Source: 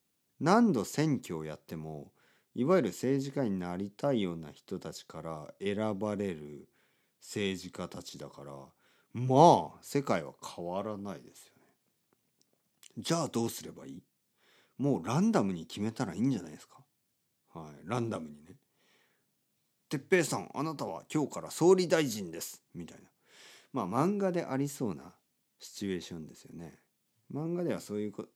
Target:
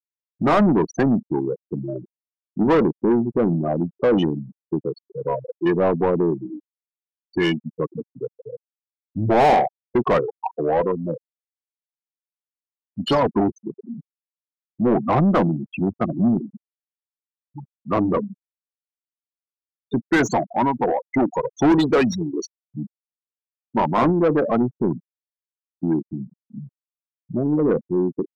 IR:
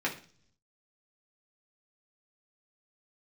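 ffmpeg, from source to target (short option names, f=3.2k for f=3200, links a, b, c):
-filter_complex "[0:a]asetrate=38170,aresample=44100,atempo=1.15535,afftfilt=real='re*gte(hypot(re,im),0.0355)':imag='im*gte(hypot(re,im),0.0355)':win_size=1024:overlap=0.75,asplit=2[a][b];[b]highpass=f=720:p=1,volume=32dB,asoftclip=type=tanh:threshold=-7dB[c];[a][c]amix=inputs=2:normalize=0,lowpass=f=1.5k:p=1,volume=-6dB"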